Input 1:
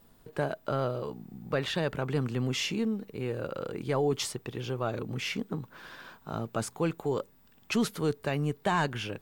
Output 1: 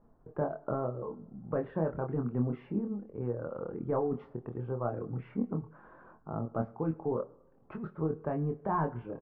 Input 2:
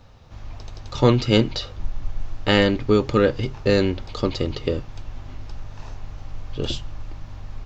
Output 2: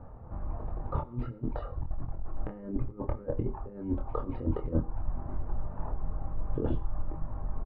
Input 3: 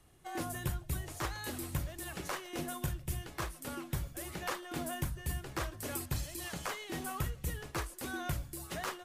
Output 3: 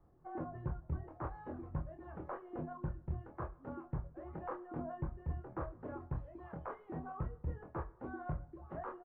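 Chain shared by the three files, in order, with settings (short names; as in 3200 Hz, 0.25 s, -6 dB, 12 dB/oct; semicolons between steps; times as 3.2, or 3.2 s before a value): reverb removal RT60 0.6 s; LPF 1200 Hz 24 dB/oct; dynamic EQ 240 Hz, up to +5 dB, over -38 dBFS, Q 2.5; negative-ratio compressor -27 dBFS, ratio -0.5; doubler 25 ms -5 dB; two-slope reverb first 0.64 s, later 2.1 s, from -17 dB, DRR 14.5 dB; gain -3 dB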